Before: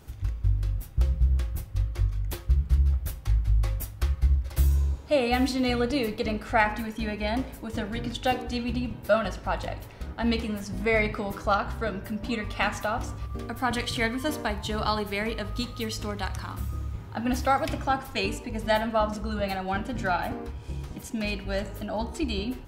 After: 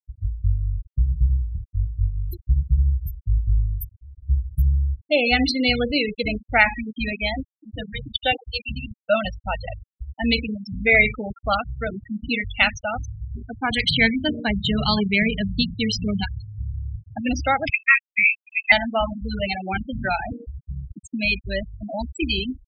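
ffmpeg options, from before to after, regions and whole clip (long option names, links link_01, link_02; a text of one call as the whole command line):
ffmpeg -i in.wav -filter_complex "[0:a]asettb=1/sr,asplit=3[link_01][link_02][link_03];[link_01]atrim=end=3.884[link_04];[link_02]atrim=start=3.88:end=4.29,asetpts=PTS-STARTPTS,afade=type=in:duration=0.004:curve=qsin,afade=type=out:start_time=0.406:duration=0.004:curve=qsin,aeval=exprs='(tanh(50.1*val(0)+0.35)-tanh(0.35))/50.1':channel_layout=same,acompressor=threshold=-38dB:ratio=10:attack=3.2:release=140:knee=1:detection=peak[link_05];[link_03]atrim=start=4.286[link_06];[link_04][link_05]acrossfade=duration=0.004:curve1=hsin:curve2=qsin[link_07];[link_07][link_06]acrossfade=duration=0.004:curve1=qsin:curve2=hsin,asettb=1/sr,asplit=3[link_08][link_09][link_10];[link_08]atrim=end=7.184[link_11];[link_09]atrim=start=7.18:end=9.12,asetpts=PTS-STARTPTS,afade=type=in:duration=0.004:curve=qsin,afade=type=out:start_time=1.936:duration=0.004:curve=qsin,bandreject=frequency=240:width=6.2,aeval=exprs='sgn(val(0))*max(abs(val(0))-0.00473,0)':channel_layout=same[link_12];[link_10]atrim=start=9.116[link_13];[link_11][link_12]acrossfade=duration=0.004:curve1=hsin:curve2=qsin[link_14];[link_14][link_13]acrossfade=duration=0.004:curve1=qsin:curve2=hsin,asettb=1/sr,asplit=3[link_15][link_16][link_17];[link_15]atrim=end=13.834[link_18];[link_16]atrim=start=13.83:end=16.24,asetpts=PTS-STARTPTS,afade=type=in:duration=0.004:curve=qsin,afade=type=out:start_time=2.406:duration=0.004:curve=qsin,lowpass=12000,equalizer=frequency=180:width_type=o:width=0.6:gain=14.5[link_19];[link_17]atrim=start=16.236[link_20];[link_18][link_19]acrossfade=duration=0.004:curve1=hsin:curve2=qsin[link_21];[link_21][link_20]acrossfade=duration=0.004:curve1=qsin:curve2=hsin,asettb=1/sr,asplit=3[link_22][link_23][link_24];[link_22]atrim=end=17.704[link_25];[link_23]atrim=start=17.7:end=18.72,asetpts=PTS-STARTPTS,afade=type=in:duration=0.004:curve=qsin,afade=type=out:start_time=1.016:duration=0.004:curve=qsin,agate=range=-18dB:threshold=-30dB:ratio=16:release=100:detection=peak,adynamicsmooth=sensitivity=7.5:basefreq=870,lowpass=frequency=2300:width_type=q:width=0.5098,lowpass=frequency=2300:width_type=q:width=0.6013,lowpass=frequency=2300:width_type=q:width=0.9,lowpass=frequency=2300:width_type=q:width=2.563,afreqshift=-2700[link_26];[link_24]atrim=start=18.716[link_27];[link_25][link_26]acrossfade=duration=0.004:curve1=hsin:curve2=qsin[link_28];[link_28][link_27]acrossfade=duration=0.004:curve1=qsin:curve2=hsin,highshelf=frequency=1700:width_type=q:width=1.5:gain=7.5,afftfilt=real='re*gte(hypot(re,im),0.1)':imag='im*gte(hypot(re,im),0.1)':win_size=1024:overlap=0.75,volume=3.5dB" out.wav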